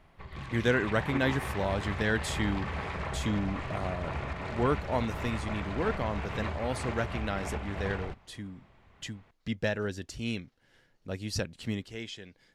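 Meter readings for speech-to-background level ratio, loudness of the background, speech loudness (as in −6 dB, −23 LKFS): 3.5 dB, −37.0 LKFS, −33.5 LKFS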